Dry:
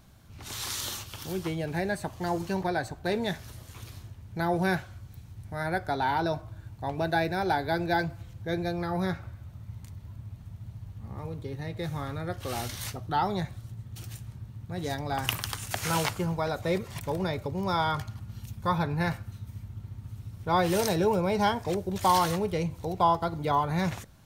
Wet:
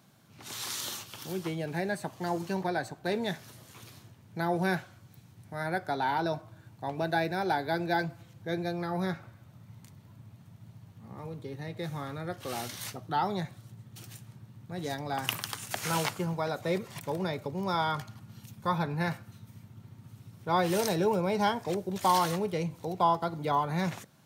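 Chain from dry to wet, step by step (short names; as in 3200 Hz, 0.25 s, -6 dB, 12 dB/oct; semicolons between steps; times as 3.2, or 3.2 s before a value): HPF 130 Hz 24 dB/oct; gain -2 dB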